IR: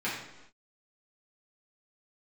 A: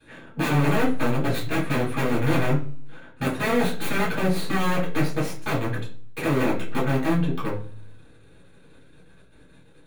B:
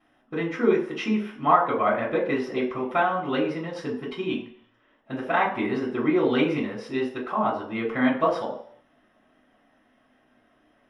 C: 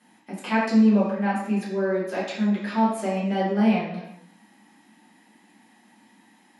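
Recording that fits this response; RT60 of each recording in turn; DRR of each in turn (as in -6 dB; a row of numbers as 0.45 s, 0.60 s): C; 0.50 s, 0.65 s, no single decay rate; -9.0 dB, -14.0 dB, -9.0 dB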